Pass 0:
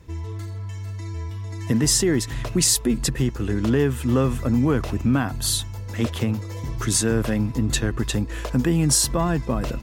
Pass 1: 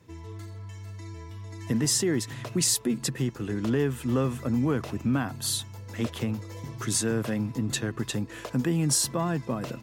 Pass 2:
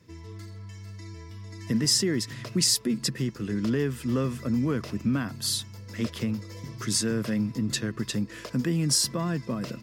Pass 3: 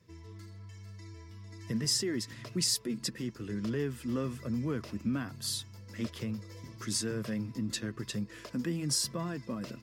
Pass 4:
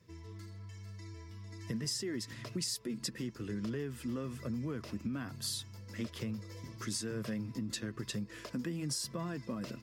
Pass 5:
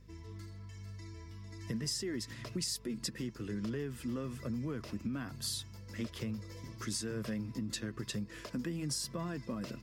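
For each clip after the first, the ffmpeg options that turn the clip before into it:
-af "highpass=f=100:w=0.5412,highpass=f=100:w=1.3066,volume=-5.5dB"
-af "equalizer=f=200:t=o:w=0.33:g=6,equalizer=f=800:t=o:w=0.33:g=-10,equalizer=f=2k:t=o:w=0.33:g=3,equalizer=f=5k:t=o:w=0.33:g=9,volume=-1.5dB"
-af "flanger=delay=1.7:depth=2:regen=-64:speed=1.1:shape=sinusoidal,volume=-2.5dB"
-af "acompressor=threshold=-34dB:ratio=6"
-af "aeval=exprs='val(0)+0.00141*(sin(2*PI*50*n/s)+sin(2*PI*2*50*n/s)/2+sin(2*PI*3*50*n/s)/3+sin(2*PI*4*50*n/s)/4+sin(2*PI*5*50*n/s)/5)':c=same"

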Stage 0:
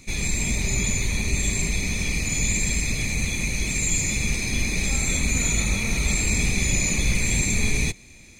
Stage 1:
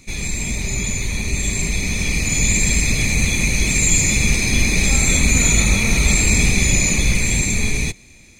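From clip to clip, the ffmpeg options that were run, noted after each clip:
-af "dynaudnorm=f=460:g=9:m=9dB,volume=1dB"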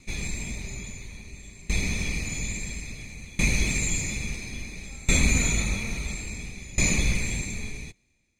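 -filter_complex "[0:a]asplit=2[a][b];[b]aeval=exprs='sgn(val(0))*max(abs(val(0))-0.0224,0)':c=same,volume=-11dB[c];[a][c]amix=inputs=2:normalize=0,highshelf=f=6.9k:g=-6,aeval=exprs='val(0)*pow(10,-23*if(lt(mod(0.59*n/s,1),2*abs(0.59)/1000),1-mod(0.59*n/s,1)/(2*abs(0.59)/1000),(mod(0.59*n/s,1)-2*abs(0.59)/1000)/(1-2*abs(0.59)/1000))/20)':c=same,volume=-5dB"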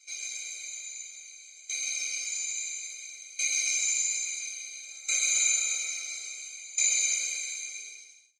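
-filter_complex "[0:a]bandpass=f=5.6k:t=q:w=2:csg=0,asplit=2[a][b];[b]aecho=0:1:130|227.5|300.6|355.5|396.6:0.631|0.398|0.251|0.158|0.1[c];[a][c]amix=inputs=2:normalize=0,afftfilt=real='re*eq(mod(floor(b*sr/1024/410),2),1)':imag='im*eq(mod(floor(b*sr/1024/410),2),1)':win_size=1024:overlap=0.75,volume=7.5dB"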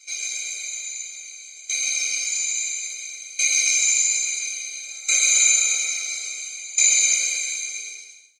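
-af "aecho=1:1:107|214|321|428:0.158|0.0729|0.0335|0.0154,volume=8.5dB"

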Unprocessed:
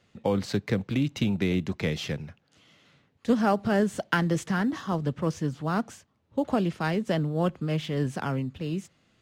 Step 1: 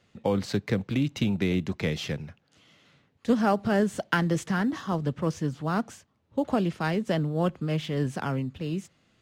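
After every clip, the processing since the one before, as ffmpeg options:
-af anull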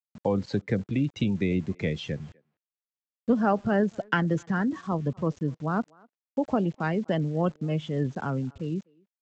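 -filter_complex "[0:a]afftdn=nr=14:nf=-34,aresample=16000,aeval=exprs='val(0)*gte(abs(val(0)),0.00422)':c=same,aresample=44100,asplit=2[a][b];[b]adelay=250,highpass=300,lowpass=3.4k,asoftclip=type=hard:threshold=-20dB,volume=-26dB[c];[a][c]amix=inputs=2:normalize=0"

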